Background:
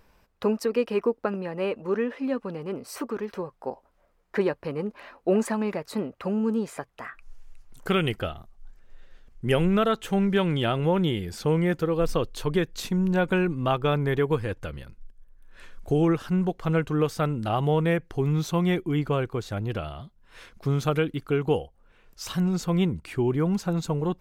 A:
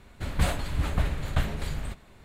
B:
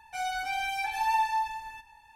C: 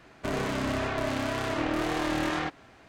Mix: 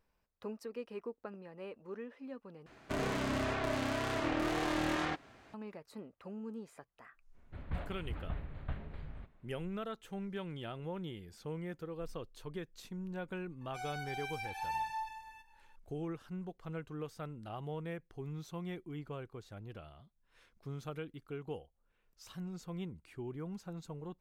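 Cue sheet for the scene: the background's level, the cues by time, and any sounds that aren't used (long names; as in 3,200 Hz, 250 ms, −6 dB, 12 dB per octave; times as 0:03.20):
background −18.5 dB
0:02.66: overwrite with C −5 dB
0:07.32: mix in A −13.5 dB, fades 0.05 s + high-frequency loss of the air 450 metres
0:13.61: mix in B −11 dB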